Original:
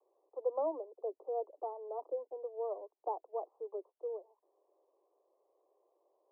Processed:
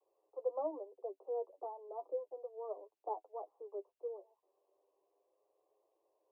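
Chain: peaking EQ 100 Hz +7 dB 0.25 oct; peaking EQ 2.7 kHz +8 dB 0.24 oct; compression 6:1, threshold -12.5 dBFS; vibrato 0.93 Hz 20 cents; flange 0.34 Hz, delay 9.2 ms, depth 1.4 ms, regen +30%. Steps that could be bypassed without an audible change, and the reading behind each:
peaking EQ 100 Hz: input has nothing below 300 Hz; peaking EQ 2.7 kHz: input has nothing above 1.2 kHz; compression, threshold -12.5 dBFS: peak at its input -23.5 dBFS

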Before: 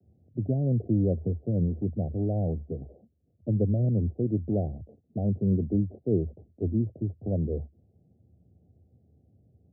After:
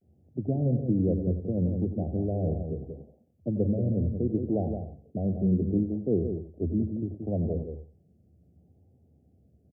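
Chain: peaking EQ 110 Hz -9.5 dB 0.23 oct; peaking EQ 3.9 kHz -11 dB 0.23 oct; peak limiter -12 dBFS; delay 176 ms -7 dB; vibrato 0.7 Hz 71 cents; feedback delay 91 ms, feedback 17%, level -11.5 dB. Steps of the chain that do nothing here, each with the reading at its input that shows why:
peaking EQ 3.9 kHz: input has nothing above 760 Hz; peak limiter -12 dBFS: peak at its input -15.0 dBFS

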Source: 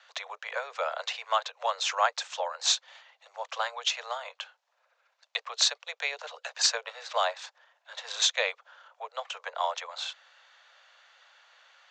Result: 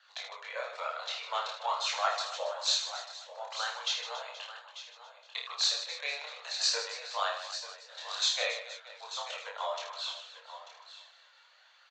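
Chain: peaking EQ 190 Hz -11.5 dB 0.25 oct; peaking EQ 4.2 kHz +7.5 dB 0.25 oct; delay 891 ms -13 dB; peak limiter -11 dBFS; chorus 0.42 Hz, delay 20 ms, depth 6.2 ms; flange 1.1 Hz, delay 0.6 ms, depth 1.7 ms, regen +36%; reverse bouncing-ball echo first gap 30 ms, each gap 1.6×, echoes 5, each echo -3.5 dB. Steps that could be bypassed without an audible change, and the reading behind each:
peaking EQ 190 Hz: input has nothing below 400 Hz

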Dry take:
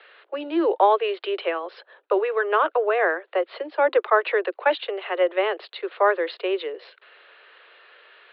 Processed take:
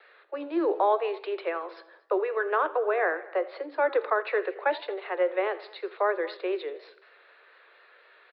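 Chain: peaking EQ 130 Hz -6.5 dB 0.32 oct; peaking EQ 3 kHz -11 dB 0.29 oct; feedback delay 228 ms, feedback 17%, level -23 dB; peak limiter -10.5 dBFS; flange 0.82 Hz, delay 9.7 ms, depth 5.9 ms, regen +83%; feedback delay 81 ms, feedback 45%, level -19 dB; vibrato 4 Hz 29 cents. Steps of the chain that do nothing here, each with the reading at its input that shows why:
peaking EQ 130 Hz: input has nothing below 270 Hz

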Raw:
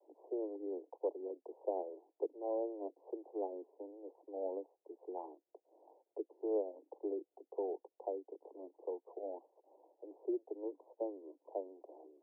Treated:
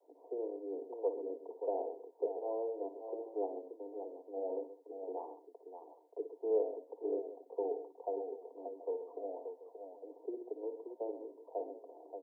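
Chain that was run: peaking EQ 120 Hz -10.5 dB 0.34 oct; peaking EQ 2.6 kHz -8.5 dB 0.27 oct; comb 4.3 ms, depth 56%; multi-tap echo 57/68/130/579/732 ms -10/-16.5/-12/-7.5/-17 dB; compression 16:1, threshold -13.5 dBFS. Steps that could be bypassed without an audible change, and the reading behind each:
peaking EQ 120 Hz: input has nothing below 270 Hz; peaking EQ 2.6 kHz: input has nothing above 1 kHz; compression, threshold -13.5 dBFS: peak at its input -22.0 dBFS

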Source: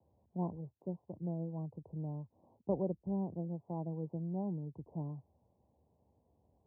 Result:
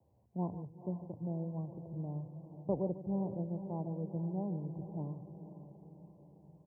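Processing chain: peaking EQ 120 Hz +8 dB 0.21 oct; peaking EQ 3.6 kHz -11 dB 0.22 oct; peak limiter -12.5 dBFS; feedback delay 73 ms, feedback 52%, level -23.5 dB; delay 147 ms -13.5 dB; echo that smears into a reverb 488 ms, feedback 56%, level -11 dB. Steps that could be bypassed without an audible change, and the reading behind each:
peaking EQ 3.6 kHz: input has nothing above 1 kHz; peak limiter -12.5 dBFS: peak at its input -21.0 dBFS

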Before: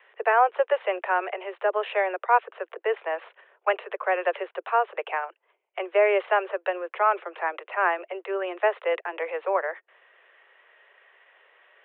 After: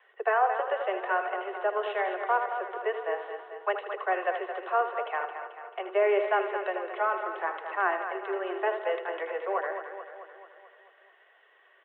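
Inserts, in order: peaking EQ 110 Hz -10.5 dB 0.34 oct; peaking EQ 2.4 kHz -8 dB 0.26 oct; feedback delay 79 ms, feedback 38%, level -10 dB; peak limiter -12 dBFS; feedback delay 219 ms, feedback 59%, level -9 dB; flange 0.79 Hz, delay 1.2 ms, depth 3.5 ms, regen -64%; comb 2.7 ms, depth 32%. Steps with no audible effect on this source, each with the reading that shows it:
peaking EQ 110 Hz: input has nothing below 320 Hz

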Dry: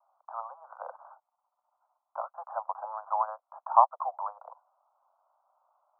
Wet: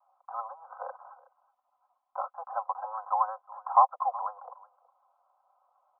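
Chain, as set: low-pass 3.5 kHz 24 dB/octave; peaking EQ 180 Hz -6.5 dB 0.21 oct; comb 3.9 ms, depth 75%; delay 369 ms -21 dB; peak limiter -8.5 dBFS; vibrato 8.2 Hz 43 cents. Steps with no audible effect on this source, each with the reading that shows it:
low-pass 3.5 kHz: input has nothing above 1.5 kHz; peaking EQ 180 Hz: input has nothing below 480 Hz

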